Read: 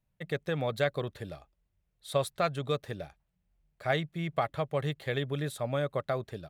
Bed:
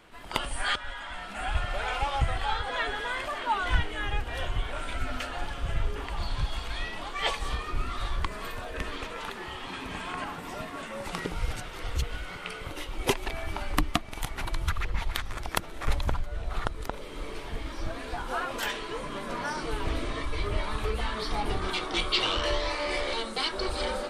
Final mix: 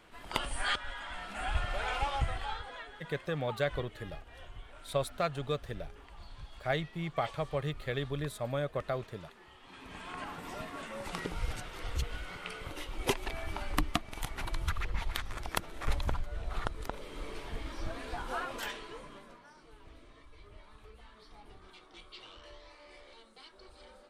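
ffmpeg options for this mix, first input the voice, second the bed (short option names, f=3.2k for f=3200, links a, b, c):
-filter_complex "[0:a]adelay=2800,volume=-3dB[a];[1:a]volume=10dB,afade=t=out:st=2.03:d=0.83:silence=0.188365,afade=t=in:st=9.62:d=0.83:silence=0.211349,afade=t=out:st=18.3:d=1.11:silence=0.1[b];[a][b]amix=inputs=2:normalize=0"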